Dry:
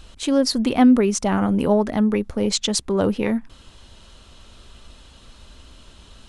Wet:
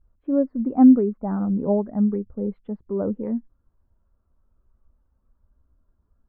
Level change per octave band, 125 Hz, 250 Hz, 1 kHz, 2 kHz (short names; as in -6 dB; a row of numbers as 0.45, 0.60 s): -3.0 dB, -0.5 dB, -7.0 dB, under -20 dB